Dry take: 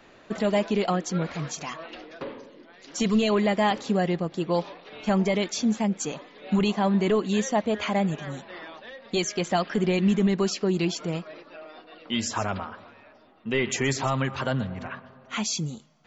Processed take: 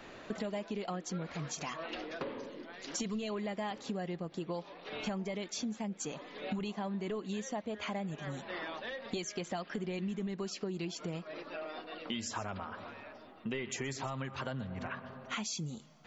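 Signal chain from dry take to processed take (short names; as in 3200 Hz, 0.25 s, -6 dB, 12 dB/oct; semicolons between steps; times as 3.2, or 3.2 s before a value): compressor 6:1, threshold -39 dBFS, peak gain reduction 19 dB; gain +2.5 dB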